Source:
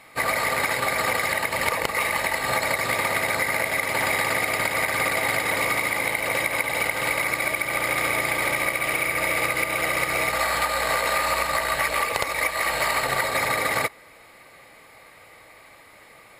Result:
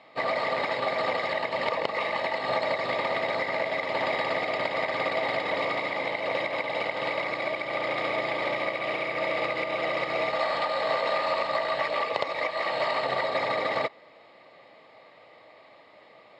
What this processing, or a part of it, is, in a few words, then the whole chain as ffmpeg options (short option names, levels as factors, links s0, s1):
kitchen radio: -af "highpass=170,equalizer=f=620:t=q:w=4:g=6,equalizer=f=1500:t=q:w=4:g=-9,equalizer=f=2300:t=q:w=4:g=-6,lowpass=f=4300:w=0.5412,lowpass=f=4300:w=1.3066,volume=0.75"